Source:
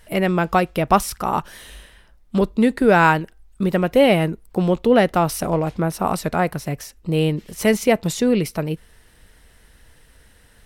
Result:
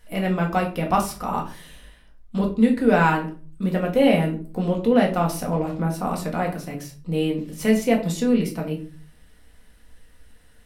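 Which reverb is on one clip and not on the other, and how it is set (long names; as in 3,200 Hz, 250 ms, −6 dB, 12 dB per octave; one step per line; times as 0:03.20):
rectangular room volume 280 cubic metres, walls furnished, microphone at 1.9 metres
level −8 dB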